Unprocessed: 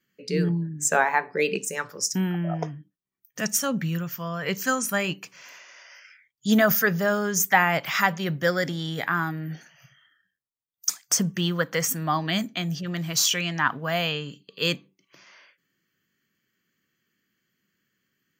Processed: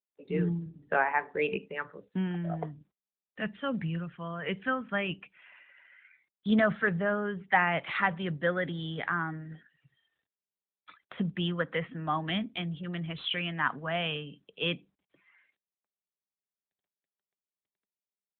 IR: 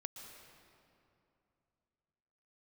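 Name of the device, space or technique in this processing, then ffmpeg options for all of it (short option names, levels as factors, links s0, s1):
mobile call with aggressive noise cancelling: -af "highpass=f=130:w=0.5412,highpass=f=130:w=1.3066,afftdn=nr=23:nf=-49,volume=0.562" -ar 8000 -c:a libopencore_amrnb -b:a 12200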